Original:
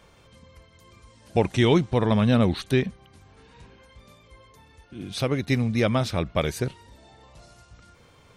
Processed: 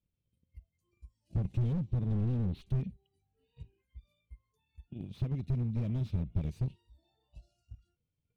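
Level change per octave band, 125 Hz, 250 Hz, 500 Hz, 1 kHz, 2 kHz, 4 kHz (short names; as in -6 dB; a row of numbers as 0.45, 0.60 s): -5.5 dB, -13.5 dB, -23.0 dB, -25.0 dB, under -25 dB, under -25 dB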